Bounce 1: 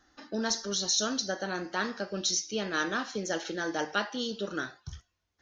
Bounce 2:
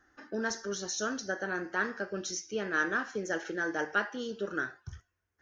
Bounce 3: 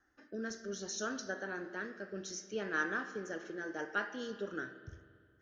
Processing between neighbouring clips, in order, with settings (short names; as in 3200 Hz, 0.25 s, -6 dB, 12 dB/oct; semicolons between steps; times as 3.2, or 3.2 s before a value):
fifteen-band EQ 100 Hz +6 dB, 400 Hz +6 dB, 1600 Hz +9 dB, 4000 Hz -10 dB; gain -5 dB
rotary speaker horn 0.65 Hz; spring tank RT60 2.1 s, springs 31/45 ms, chirp 20 ms, DRR 10.5 dB; gain -4.5 dB